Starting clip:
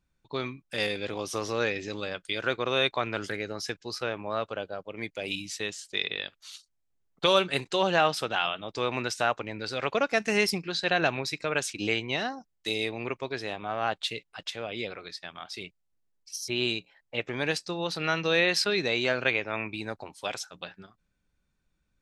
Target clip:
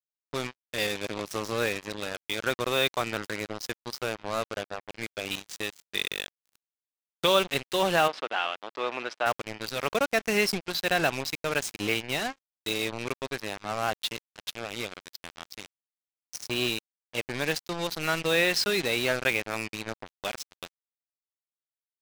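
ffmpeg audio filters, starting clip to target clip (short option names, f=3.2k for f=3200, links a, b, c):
-filter_complex "[0:a]acrusher=bits=4:mix=0:aa=0.5,asplit=3[a][b][c];[a]afade=t=out:st=8.07:d=0.02[d];[b]highpass=380,lowpass=3k,afade=t=in:st=8.07:d=0.02,afade=t=out:st=9.25:d=0.02[e];[c]afade=t=in:st=9.25:d=0.02[f];[d][e][f]amix=inputs=3:normalize=0"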